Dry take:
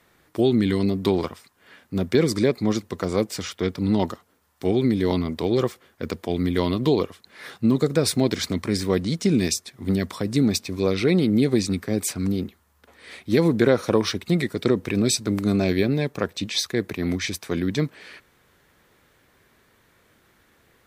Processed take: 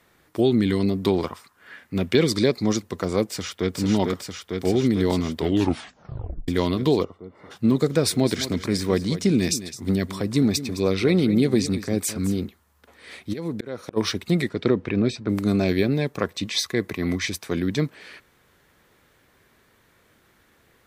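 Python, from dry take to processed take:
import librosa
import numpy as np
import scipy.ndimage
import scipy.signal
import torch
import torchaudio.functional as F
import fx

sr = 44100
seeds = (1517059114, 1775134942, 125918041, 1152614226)

y = fx.peak_eq(x, sr, hz=fx.line((1.27, 910.0), (2.75, 6400.0)), db=8.5, octaves=0.76, at=(1.27, 2.75), fade=0.02)
y = fx.echo_throw(y, sr, start_s=3.28, length_s=0.49, ms=450, feedback_pct=80, wet_db=-2.5)
y = fx.savgol(y, sr, points=65, at=(7.03, 7.5), fade=0.02)
y = fx.echo_single(y, sr, ms=211, db=-13.5, at=(8.22, 12.44), fade=0.02)
y = fx.auto_swell(y, sr, attack_ms=602.0, at=(13.32, 13.96), fade=0.02)
y = fx.lowpass(y, sr, hz=fx.line((14.48, 4500.0), (15.28, 2100.0)), slope=12, at=(14.48, 15.28), fade=0.02)
y = fx.small_body(y, sr, hz=(1100.0, 2000.0), ring_ms=45, db=9, at=(16.18, 17.28))
y = fx.edit(y, sr, fx.tape_stop(start_s=5.37, length_s=1.11), tone=tone)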